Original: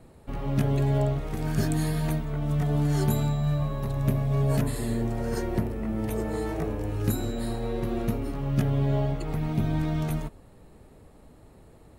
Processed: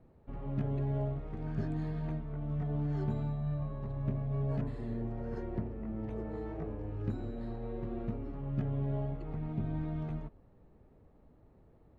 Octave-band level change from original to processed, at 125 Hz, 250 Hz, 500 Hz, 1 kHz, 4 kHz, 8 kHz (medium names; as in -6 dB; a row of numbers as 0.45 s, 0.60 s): -9.0 dB, -9.5 dB, -10.0 dB, -11.5 dB, under -20 dB, under -35 dB